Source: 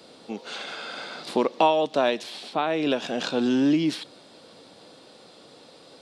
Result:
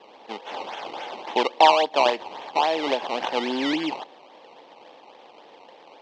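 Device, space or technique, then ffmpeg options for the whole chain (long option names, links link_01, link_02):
circuit-bent sampling toy: -af "acrusher=samples=18:mix=1:aa=0.000001:lfo=1:lforange=18:lforate=3.6,highpass=420,equalizer=frequency=860:width_type=q:width=4:gain=9,equalizer=frequency=1400:width_type=q:width=4:gain=-10,equalizer=frequency=3100:width_type=q:width=4:gain=5,lowpass=frequency=4800:width=0.5412,lowpass=frequency=4800:width=1.3066,volume=2dB"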